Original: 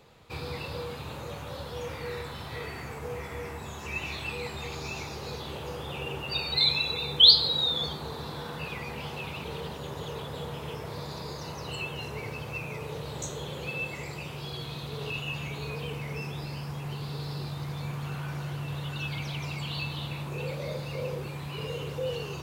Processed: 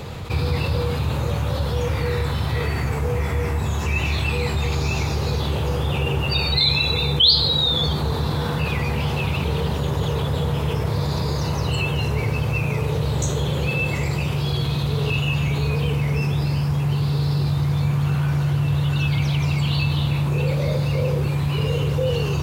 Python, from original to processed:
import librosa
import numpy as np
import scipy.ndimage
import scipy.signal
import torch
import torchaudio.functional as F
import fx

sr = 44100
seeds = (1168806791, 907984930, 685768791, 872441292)

y = fx.peak_eq(x, sr, hz=83.0, db=12.0, octaves=2.1)
y = fx.env_flatten(y, sr, amount_pct=50)